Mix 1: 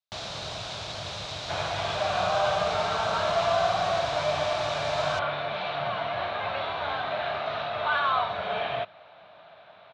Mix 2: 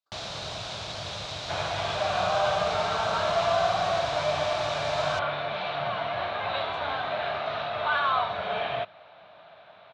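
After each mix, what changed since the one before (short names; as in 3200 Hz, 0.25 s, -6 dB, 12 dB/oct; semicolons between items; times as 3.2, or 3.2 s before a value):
speech: unmuted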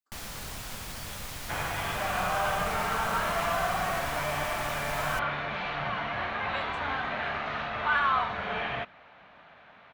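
first sound -4.0 dB; master: remove speaker cabinet 100–6000 Hz, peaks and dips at 100 Hz +5 dB, 240 Hz -10 dB, 640 Hz +10 dB, 1900 Hz -6 dB, 3800 Hz +9 dB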